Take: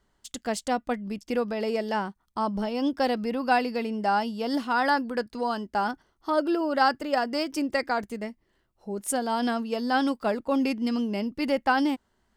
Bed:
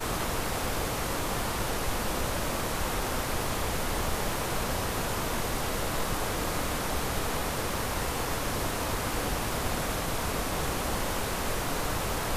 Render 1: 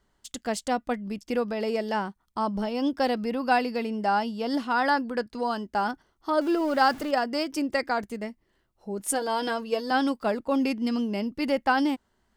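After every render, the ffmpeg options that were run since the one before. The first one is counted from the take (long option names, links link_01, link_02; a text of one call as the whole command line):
ffmpeg -i in.wav -filter_complex "[0:a]asettb=1/sr,asplit=3[link_01][link_02][link_03];[link_01]atrim=end=4.054[link_04];[link_02]atrim=start=4.05:end=5.35,asetpts=PTS-STARTPTS,afade=type=in:duration=0.004:curve=qsin,afade=type=out:start_time=1.296:duration=0.004:curve=qsin,highshelf=frequency=9400:gain=-5.5[link_05];[link_03]atrim=start=5.346[link_06];[link_04][link_05]acrossfade=duration=0.004:curve1=hsin:curve2=qsin[link_07];[link_07][link_06]acrossfade=duration=0.004:curve1=qsin:curve2=hsin,asettb=1/sr,asplit=3[link_08][link_09][link_10];[link_08]atrim=end=6.414[link_11];[link_09]atrim=start=6.41:end=7.11,asetpts=PTS-STARTPTS,afade=type=in:duration=0.004:curve=qsin,afade=type=out:start_time=0.696:duration=0.004:curve=qsin,aeval=exprs='val(0)+0.5*0.015*sgn(val(0))':channel_layout=same[link_12];[link_10]atrim=start=7.106[link_13];[link_11][link_12]acrossfade=duration=0.004:curve1=hsin:curve2=qsin[link_14];[link_14][link_13]acrossfade=duration=0.004:curve1=qsin:curve2=hsin,asettb=1/sr,asplit=3[link_15][link_16][link_17];[link_15]atrim=end=8.994[link_18];[link_16]atrim=start=8.99:end=9.91,asetpts=PTS-STARTPTS,afade=type=in:duration=0.004:curve=qsin,afade=type=out:start_time=0.916:duration=0.004:curve=qsin,aecho=1:1:6.3:0.65,atrim=end_sample=40572[link_19];[link_17]atrim=start=9.906[link_20];[link_18][link_19]acrossfade=duration=0.004:curve1=hsin:curve2=qsin[link_21];[link_21][link_20]acrossfade=duration=0.004:curve1=qsin:curve2=hsin" out.wav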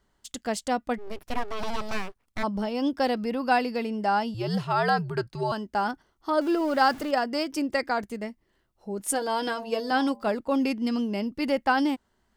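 ffmpeg -i in.wav -filter_complex "[0:a]asplit=3[link_01][link_02][link_03];[link_01]afade=type=out:start_time=0.97:duration=0.02[link_04];[link_02]aeval=exprs='abs(val(0))':channel_layout=same,afade=type=in:start_time=0.97:duration=0.02,afade=type=out:start_time=2.42:duration=0.02[link_05];[link_03]afade=type=in:start_time=2.42:duration=0.02[link_06];[link_04][link_05][link_06]amix=inputs=3:normalize=0,asettb=1/sr,asplit=3[link_07][link_08][link_09];[link_07]atrim=end=4.344[link_10];[link_08]atrim=start=4.34:end=5.52,asetpts=PTS-STARTPTS,afade=type=in:duration=0.004:curve=qsin,afade=type=out:start_time=1.176:duration=0.004:curve=qsin,afreqshift=-94[link_11];[link_09]atrim=start=5.516[link_12];[link_10][link_11]acrossfade=duration=0.004:curve1=hsin:curve2=qsin[link_13];[link_13][link_12]acrossfade=duration=0.004:curve1=qsin:curve2=hsin,asettb=1/sr,asplit=3[link_14][link_15][link_16];[link_14]atrim=end=9.434[link_17];[link_15]atrim=start=9.43:end=10.29,asetpts=PTS-STARTPTS,afade=type=in:duration=0.004:curve=qsin,afade=type=out:start_time=0.856:duration=0.004:curve=qsin,bandreject=frequency=114.1:width_type=h:width=4,bandreject=frequency=228.2:width_type=h:width=4,bandreject=frequency=342.3:width_type=h:width=4,bandreject=frequency=456.4:width_type=h:width=4,bandreject=frequency=570.5:width_type=h:width=4,bandreject=frequency=684.6:width_type=h:width=4,bandreject=frequency=798.7:width_type=h:width=4,bandreject=frequency=912.8:width_type=h:width=4,bandreject=frequency=1026.9:width_type=h:width=4[link_18];[link_16]atrim=start=10.286[link_19];[link_17][link_18]acrossfade=duration=0.004:curve1=hsin:curve2=qsin[link_20];[link_20][link_19]acrossfade=duration=0.004:curve1=qsin:curve2=hsin" out.wav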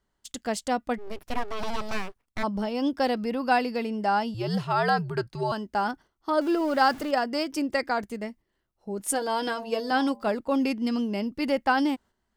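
ffmpeg -i in.wav -af "agate=range=-7dB:threshold=-48dB:ratio=16:detection=peak" out.wav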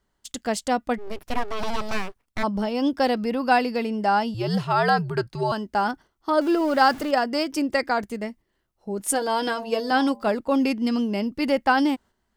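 ffmpeg -i in.wav -af "volume=3.5dB" out.wav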